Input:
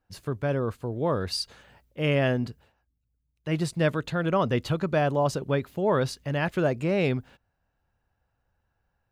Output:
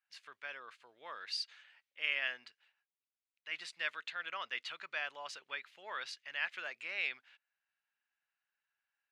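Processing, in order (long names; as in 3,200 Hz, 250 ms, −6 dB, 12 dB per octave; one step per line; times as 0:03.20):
four-pole ladder band-pass 2,700 Hz, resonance 30%
level +7 dB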